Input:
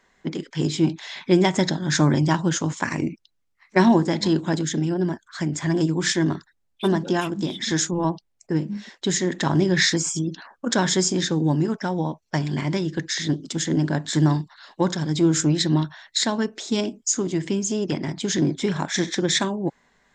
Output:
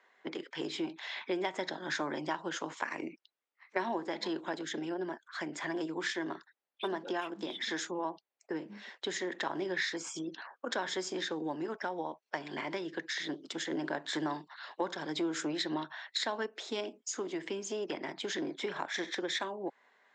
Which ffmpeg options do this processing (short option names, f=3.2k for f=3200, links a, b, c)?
-filter_complex "[0:a]asplit=3[a][b][c];[a]atrim=end=13.722[d];[b]atrim=start=13.718:end=16.462,asetpts=PTS-STARTPTS,volume=3.5dB[e];[c]atrim=start=16.458[f];[d][e]acrossfade=d=0.004:c1=hsin:c2=hsin[g];[g][f]acrossfade=d=0.004:c1=hsin:c2=hsin,highpass=270,acrossover=split=350 3900:gain=0.2 1 0.178[h][i][j];[h][i][j]amix=inputs=3:normalize=0,acompressor=threshold=-32dB:ratio=2.5,volume=-2.5dB"